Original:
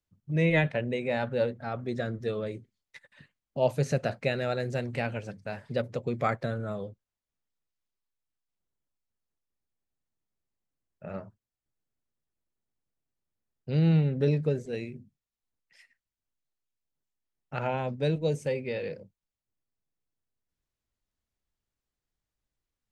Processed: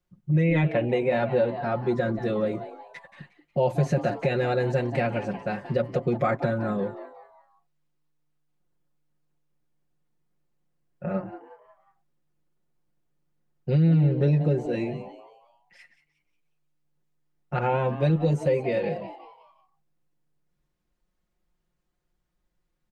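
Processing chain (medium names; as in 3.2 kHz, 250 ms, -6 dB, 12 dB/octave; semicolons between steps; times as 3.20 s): comb 5.6 ms, depth 90%; peak limiter -17 dBFS, peak gain reduction 7 dB; treble shelf 2.5 kHz -10.5 dB; frequency-shifting echo 180 ms, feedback 40%, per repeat +150 Hz, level -15 dB; compression 1.5:1, threshold -34 dBFS, peak gain reduction 5.5 dB; trim +8 dB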